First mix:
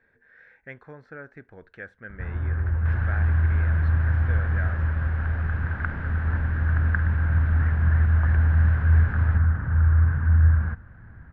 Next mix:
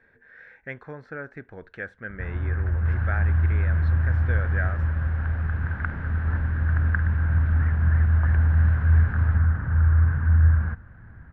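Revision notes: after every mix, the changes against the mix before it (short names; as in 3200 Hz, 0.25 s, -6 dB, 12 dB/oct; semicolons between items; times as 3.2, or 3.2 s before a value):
speech +5.0 dB; second sound -3.5 dB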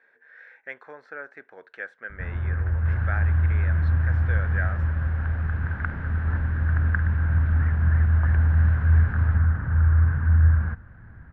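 speech: add HPF 510 Hz 12 dB/oct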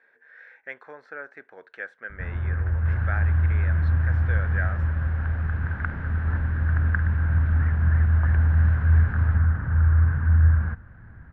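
none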